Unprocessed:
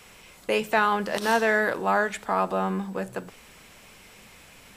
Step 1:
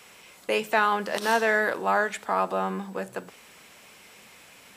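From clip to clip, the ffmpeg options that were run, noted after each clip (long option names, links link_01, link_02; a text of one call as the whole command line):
ffmpeg -i in.wav -af "highpass=frequency=260:poles=1" out.wav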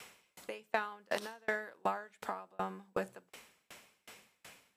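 ffmpeg -i in.wav -af "acompressor=threshold=-28dB:ratio=6,aeval=exprs='val(0)*pow(10,-35*if(lt(mod(2.7*n/s,1),2*abs(2.7)/1000),1-mod(2.7*n/s,1)/(2*abs(2.7)/1000),(mod(2.7*n/s,1)-2*abs(2.7)/1000)/(1-2*abs(2.7)/1000))/20)':channel_layout=same,volume=1.5dB" out.wav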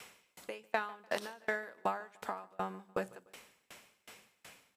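ffmpeg -i in.wav -af "aecho=1:1:148|296|444:0.0708|0.029|0.0119" out.wav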